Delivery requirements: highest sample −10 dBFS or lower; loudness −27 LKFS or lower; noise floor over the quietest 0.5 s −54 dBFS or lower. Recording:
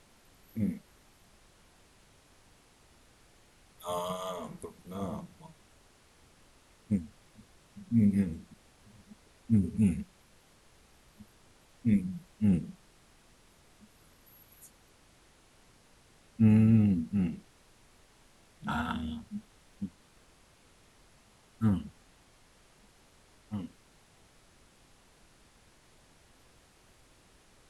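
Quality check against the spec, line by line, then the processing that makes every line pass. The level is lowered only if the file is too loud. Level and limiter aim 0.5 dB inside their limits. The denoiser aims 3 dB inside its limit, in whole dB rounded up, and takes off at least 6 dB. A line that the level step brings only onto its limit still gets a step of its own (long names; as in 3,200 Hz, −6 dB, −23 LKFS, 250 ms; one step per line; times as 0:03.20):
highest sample −13.0 dBFS: in spec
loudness −31.0 LKFS: in spec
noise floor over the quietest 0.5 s −62 dBFS: in spec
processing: no processing needed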